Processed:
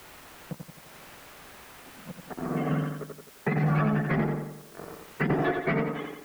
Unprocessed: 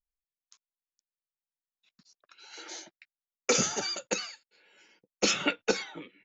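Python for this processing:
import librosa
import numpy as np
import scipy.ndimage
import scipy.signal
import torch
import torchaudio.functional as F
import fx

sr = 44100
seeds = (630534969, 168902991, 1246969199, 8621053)

y = fx.octave_mirror(x, sr, pivot_hz=1000.0)
y = fx.low_shelf(y, sr, hz=240.0, db=-9.0)
y = fx.over_compress(y, sr, threshold_db=-29.0, ratio=-0.5, at=(2.45, 5.3))
y = fx.leveller(y, sr, passes=3)
y = fx.lowpass_res(y, sr, hz=1600.0, q=1.6)
y = fx.quant_dither(y, sr, seeds[0], bits=10, dither='triangular')
y = fx.echo_feedback(y, sr, ms=86, feedback_pct=40, wet_db=-5.5)
y = fx.band_squash(y, sr, depth_pct=70)
y = F.gain(torch.from_numpy(y), -2.0).numpy()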